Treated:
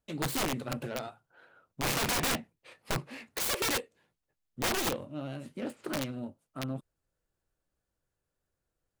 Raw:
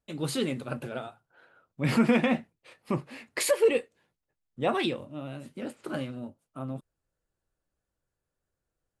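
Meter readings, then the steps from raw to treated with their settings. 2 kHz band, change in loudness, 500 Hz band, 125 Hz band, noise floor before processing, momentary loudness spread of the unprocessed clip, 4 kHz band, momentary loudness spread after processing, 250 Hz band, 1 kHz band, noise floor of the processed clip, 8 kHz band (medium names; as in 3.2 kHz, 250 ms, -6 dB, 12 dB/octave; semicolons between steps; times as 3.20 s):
-0.5 dB, -4.0 dB, -8.5 dB, -3.5 dB, under -85 dBFS, 17 LU, +3.0 dB, 12 LU, -8.0 dB, -0.5 dB, under -85 dBFS, +3.5 dB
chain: self-modulated delay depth 0.43 ms; dynamic bell 1.6 kHz, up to -5 dB, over -44 dBFS, Q 2.4; integer overflow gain 24 dB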